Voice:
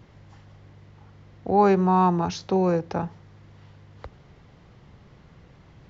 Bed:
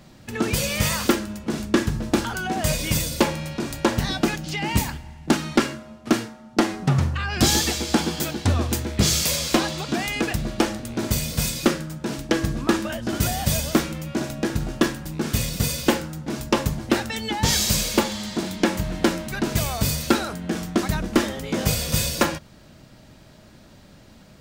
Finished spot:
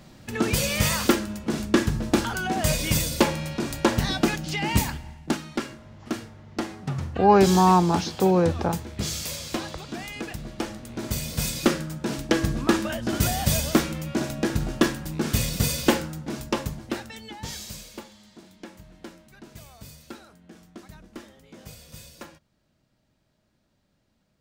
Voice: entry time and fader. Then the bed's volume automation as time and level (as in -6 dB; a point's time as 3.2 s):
5.70 s, +2.0 dB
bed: 5.09 s -0.5 dB
5.46 s -10 dB
10.56 s -10 dB
11.78 s -0.5 dB
16.02 s -0.5 dB
18.16 s -22 dB